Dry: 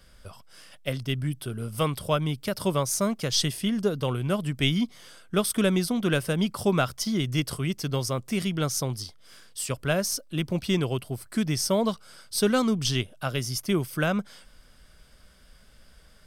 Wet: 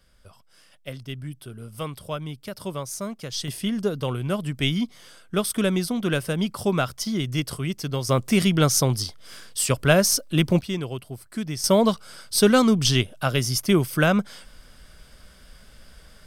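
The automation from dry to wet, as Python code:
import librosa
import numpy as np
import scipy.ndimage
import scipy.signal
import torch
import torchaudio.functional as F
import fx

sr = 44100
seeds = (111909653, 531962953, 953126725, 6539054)

y = fx.gain(x, sr, db=fx.steps((0.0, -6.0), (3.48, 0.5), (8.09, 8.0), (10.61, -3.5), (11.64, 6.0)))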